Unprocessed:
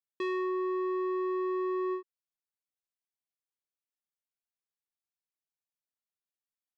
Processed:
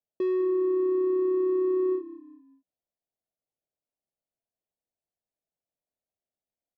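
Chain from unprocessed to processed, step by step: EQ curve 410 Hz 0 dB, 650 Hz +6 dB, 1200 Hz -17 dB; frequency-shifting echo 0.199 s, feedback 41%, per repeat -33 Hz, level -17 dB; gain +7 dB

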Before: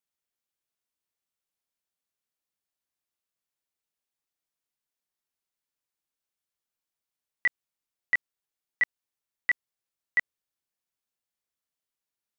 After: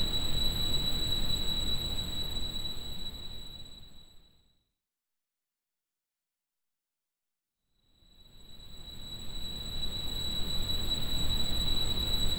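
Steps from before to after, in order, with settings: full-wave rectifier; Paulstretch 17×, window 0.50 s, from 8.12; bell 200 Hz +3.5 dB 0.63 oct; gain +1.5 dB

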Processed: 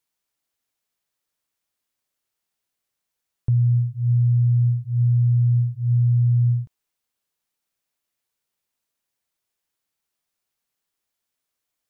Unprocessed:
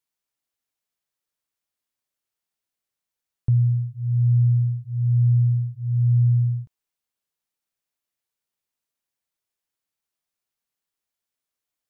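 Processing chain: limiter -18.5 dBFS, peak gain reduction 5 dB; gain +4.5 dB

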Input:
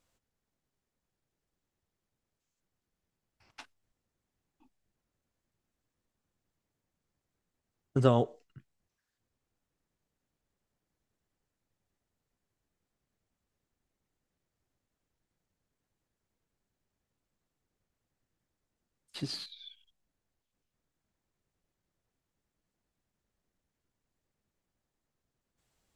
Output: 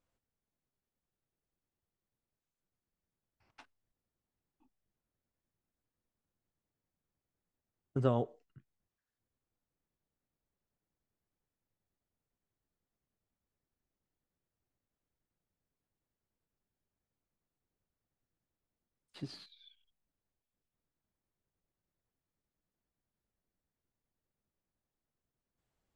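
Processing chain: high shelf 3000 Hz -10 dB; gain -5.5 dB

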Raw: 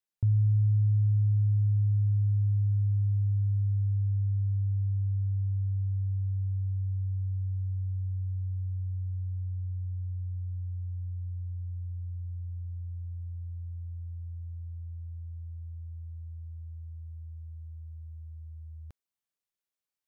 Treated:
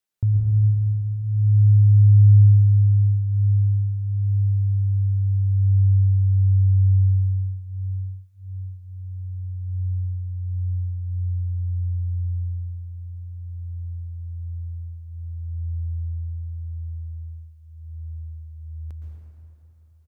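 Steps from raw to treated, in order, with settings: outdoor echo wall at 250 m, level -29 dB; reverb RT60 3.1 s, pre-delay 0.108 s, DRR -1.5 dB; gain +5 dB

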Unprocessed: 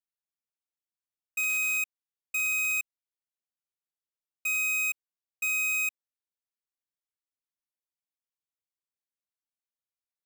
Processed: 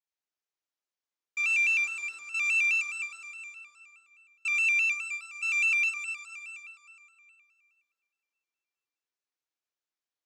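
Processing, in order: elliptic band-pass 310–6600 Hz, stop band 60 dB; reverb RT60 3.0 s, pre-delay 10 ms, DRR -2.5 dB; shaped vibrato square 4.8 Hz, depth 100 cents; gain -1 dB

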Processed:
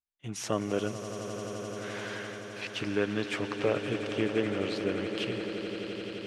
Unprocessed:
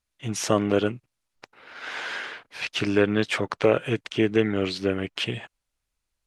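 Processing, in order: gate -41 dBFS, range -12 dB; swelling echo 86 ms, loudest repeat 8, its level -13.5 dB; gain -8.5 dB

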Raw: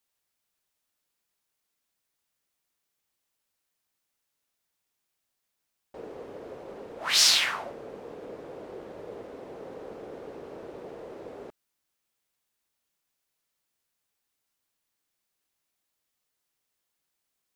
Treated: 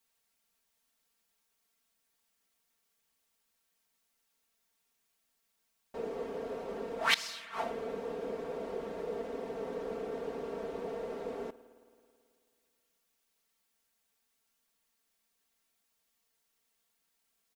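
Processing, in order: flipped gate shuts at -17 dBFS, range -26 dB; comb 4.4 ms, depth 93%; spring tank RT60 2.4 s, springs 54 ms, chirp 35 ms, DRR 16 dB

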